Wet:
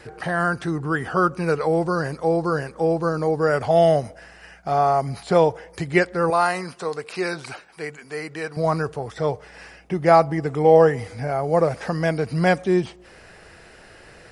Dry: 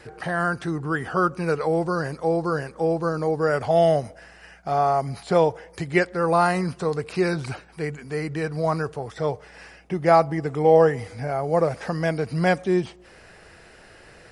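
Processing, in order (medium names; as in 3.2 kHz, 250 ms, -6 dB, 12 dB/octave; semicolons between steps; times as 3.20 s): 6.30–8.57 s: high-pass 620 Hz 6 dB/octave; trim +2 dB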